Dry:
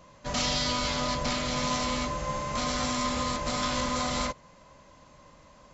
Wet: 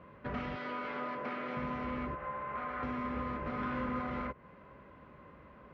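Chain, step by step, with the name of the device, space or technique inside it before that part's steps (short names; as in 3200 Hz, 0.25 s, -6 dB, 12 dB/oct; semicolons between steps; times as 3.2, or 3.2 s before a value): 0.55–1.57 HPF 310 Hz 12 dB/oct; 2.15–2.83 three-band isolator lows -13 dB, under 560 Hz, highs -13 dB, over 2300 Hz; dynamic EQ 3800 Hz, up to -6 dB, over -46 dBFS, Q 1.7; bass amplifier (compressor 3:1, threshold -36 dBFS, peak gain reduction 8.5 dB; speaker cabinet 63–2400 Hz, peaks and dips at 64 Hz +6 dB, 220 Hz +3 dB, 400 Hz +8 dB, 620 Hz -4 dB, 910 Hz -4 dB, 1400 Hz +4 dB); 3.55–4 doubler 37 ms -6 dB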